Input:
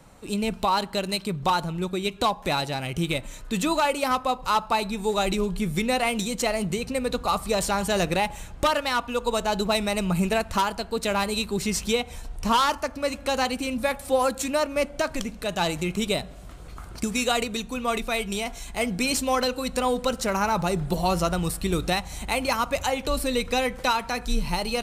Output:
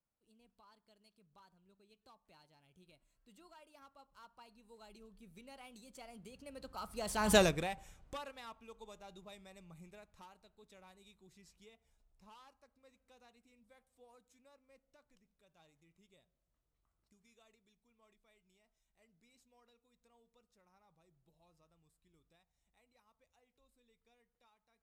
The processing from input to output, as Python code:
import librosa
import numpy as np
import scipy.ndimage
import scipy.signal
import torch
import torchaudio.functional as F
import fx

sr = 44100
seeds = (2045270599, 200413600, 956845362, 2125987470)

y = fx.doppler_pass(x, sr, speed_mps=24, closest_m=1.3, pass_at_s=7.35)